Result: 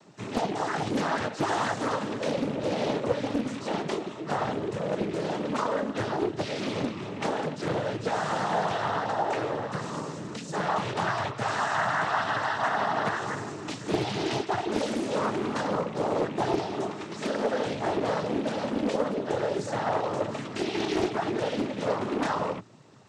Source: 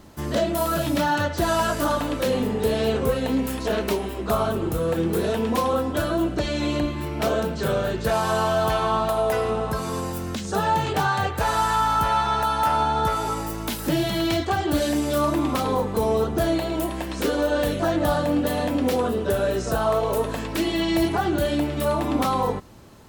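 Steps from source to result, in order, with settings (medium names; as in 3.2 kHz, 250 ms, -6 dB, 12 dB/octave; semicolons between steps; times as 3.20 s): rattle on loud lows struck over -25 dBFS, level -25 dBFS; noise-vocoded speech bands 12; loudspeaker Doppler distortion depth 0.59 ms; trim -5 dB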